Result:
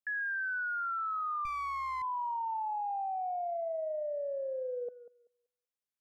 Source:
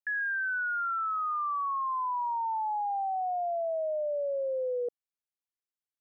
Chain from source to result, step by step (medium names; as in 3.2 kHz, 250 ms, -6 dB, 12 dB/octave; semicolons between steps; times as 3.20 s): peaking EQ 340 Hz -15 dB 0.4 oct; tape echo 190 ms, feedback 20%, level -13 dB, low-pass 1.2 kHz; 1.45–2.02 s: sliding maximum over 9 samples; trim -3.5 dB